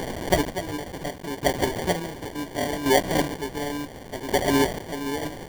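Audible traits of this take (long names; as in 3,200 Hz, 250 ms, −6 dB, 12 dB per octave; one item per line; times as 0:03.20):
a quantiser's noise floor 6 bits, dither triangular
chopped level 0.7 Hz, depth 65%, duty 35%
aliases and images of a low sample rate 1,300 Hz, jitter 0%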